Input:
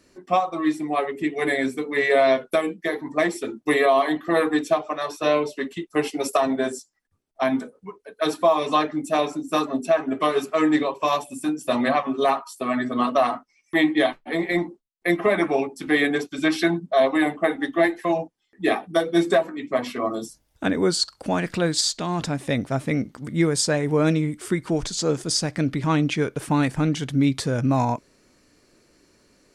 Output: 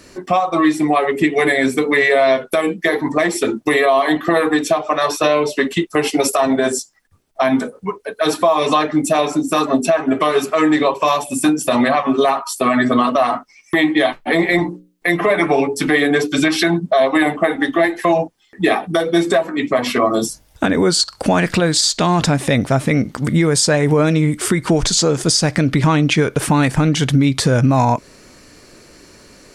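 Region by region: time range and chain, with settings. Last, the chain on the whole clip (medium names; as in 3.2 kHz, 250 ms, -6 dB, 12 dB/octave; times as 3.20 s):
14.58–16.48 s: hum notches 60/120/180/240/300/360/420/480/540 Hz + comb 6.8 ms, depth 44%
whole clip: peaking EQ 290 Hz -3 dB 1.2 oct; compression, threshold -26 dBFS; loudness maximiser +20 dB; trim -4 dB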